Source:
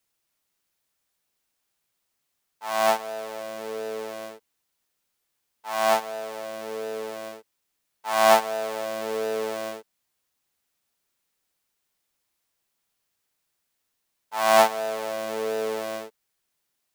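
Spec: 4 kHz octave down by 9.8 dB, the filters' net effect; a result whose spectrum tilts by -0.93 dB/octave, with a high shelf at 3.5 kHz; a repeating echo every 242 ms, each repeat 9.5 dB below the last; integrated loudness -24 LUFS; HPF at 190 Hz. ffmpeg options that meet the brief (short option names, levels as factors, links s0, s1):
-af "highpass=190,highshelf=f=3500:g=-6.5,equalizer=f=4000:t=o:g=-9,aecho=1:1:242|484|726|968:0.335|0.111|0.0365|0.012,volume=1.41"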